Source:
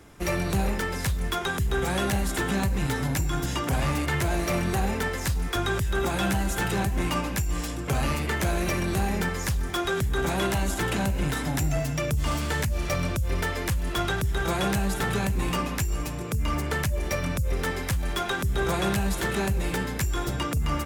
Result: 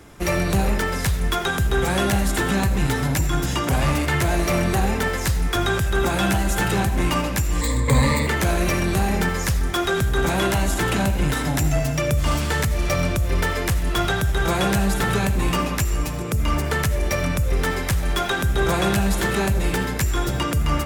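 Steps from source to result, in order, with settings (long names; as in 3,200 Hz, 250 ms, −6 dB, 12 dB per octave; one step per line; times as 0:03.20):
0:07.61–0:08.27: EQ curve with evenly spaced ripples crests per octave 1, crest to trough 17 dB
on a send: convolution reverb RT60 0.45 s, pre-delay 40 ms, DRR 11 dB
on the sum: level +5 dB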